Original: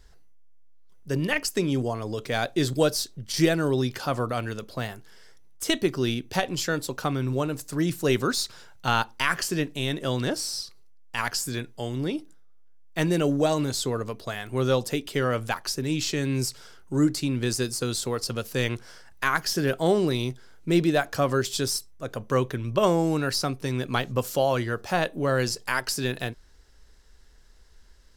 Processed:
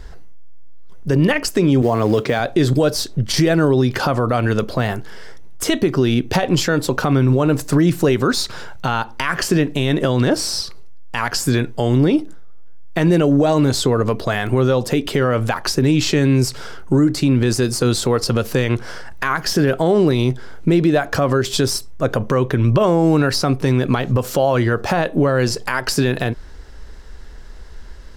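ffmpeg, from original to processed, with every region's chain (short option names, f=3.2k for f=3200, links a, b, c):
-filter_complex "[0:a]asettb=1/sr,asplit=3[a][b][c];[a]atrim=end=1.824[d];[b]atrim=start=1.82:end=2.4,asetpts=PTS-STARTPTS,afade=t=in:d=0.004:c=qsin,afade=t=out:st=0.576:d=0.004:c=qsin,highpass=110,lowpass=7.2k,acrusher=bits=5:mode=log:mix=0:aa=0.000001[e];[c]atrim=start=2.396[f];[d][e]acrossfade=d=0.004:c1=hsin:c2=qsin[g];[g][f]acrossfade=d=0.004:c1=qsin:c2=hsin,acompressor=threshold=-29dB:ratio=3,highshelf=f=3.2k:g=-11.5,alimiter=level_in=24.5dB:limit=-1dB:release=50:level=0:latency=1,volume=-5.5dB"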